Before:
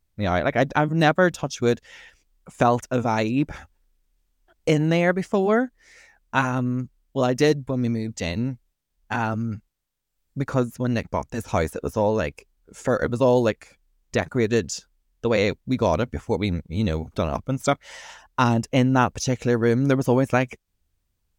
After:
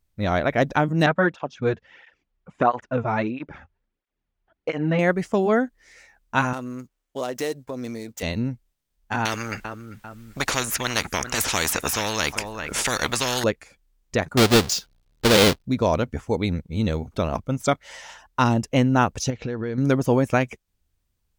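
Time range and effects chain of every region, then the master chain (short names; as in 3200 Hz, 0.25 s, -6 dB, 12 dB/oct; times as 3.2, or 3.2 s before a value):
1.06–4.99 LPF 2600 Hz + dynamic EQ 1400 Hz, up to +4 dB, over -31 dBFS, Q 0.89 + tape flanging out of phase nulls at 1.5 Hz, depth 4.1 ms
6.53–8.23 median filter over 9 samples + tone controls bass -15 dB, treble +8 dB + compressor 2:1, threshold -27 dBFS
9.25–13.44 bell 1800 Hz +7.5 dB 1.6 oct + feedback echo 0.395 s, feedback 26%, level -24 dB + spectral compressor 4:1
14.37–15.65 half-waves squared off + bell 4100 Hz +7.5 dB 1.2 oct
19.3–19.78 LPF 4700 Hz 24 dB/oct + compressor, threshold -24 dBFS
whole clip: dry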